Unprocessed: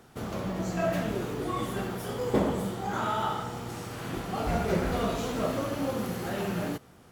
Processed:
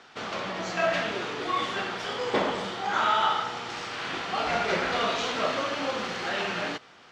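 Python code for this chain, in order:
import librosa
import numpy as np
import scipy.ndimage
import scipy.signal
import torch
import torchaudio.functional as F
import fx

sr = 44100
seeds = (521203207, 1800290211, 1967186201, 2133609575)

p1 = fx.weighting(x, sr, curve='ITU-R 468')
p2 = fx.sample_hold(p1, sr, seeds[0], rate_hz=13000.0, jitter_pct=0)
p3 = p1 + (p2 * librosa.db_to_amplitude(-4.0))
p4 = fx.air_absorb(p3, sr, metres=170.0)
y = p4 * librosa.db_to_amplitude(2.5)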